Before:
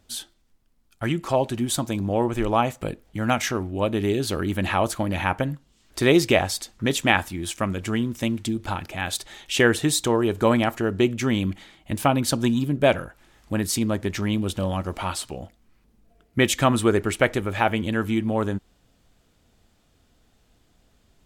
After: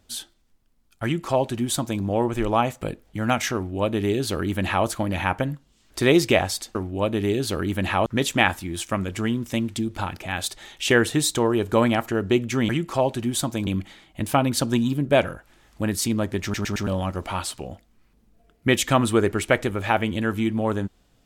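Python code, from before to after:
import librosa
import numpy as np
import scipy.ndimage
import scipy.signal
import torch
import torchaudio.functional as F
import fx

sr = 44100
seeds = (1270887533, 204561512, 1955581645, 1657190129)

y = fx.edit(x, sr, fx.duplicate(start_s=1.04, length_s=0.98, to_s=11.38),
    fx.duplicate(start_s=3.55, length_s=1.31, to_s=6.75),
    fx.stutter_over(start_s=14.14, slice_s=0.11, count=4), tone=tone)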